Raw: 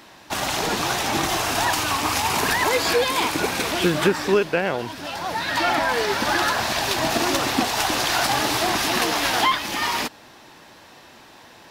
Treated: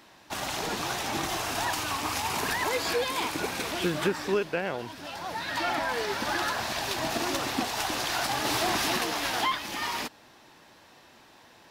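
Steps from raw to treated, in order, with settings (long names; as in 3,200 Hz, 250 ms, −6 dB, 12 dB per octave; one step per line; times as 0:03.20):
0:08.45–0:08.97: leveller curve on the samples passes 1
level −8 dB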